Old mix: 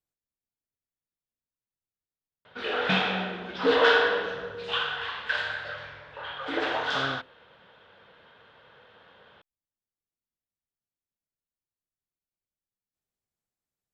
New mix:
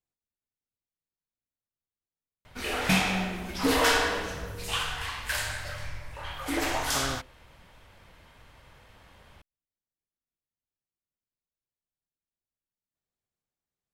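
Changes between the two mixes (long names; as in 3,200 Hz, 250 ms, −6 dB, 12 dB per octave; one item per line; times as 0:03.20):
background: remove loudspeaker in its box 190–3,600 Hz, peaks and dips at 290 Hz −5 dB, 470 Hz +8 dB, 1,500 Hz +7 dB, 2,200 Hz −6 dB, 3,500 Hz +6 dB
master: add parametric band 14,000 Hz −9 dB 0.9 octaves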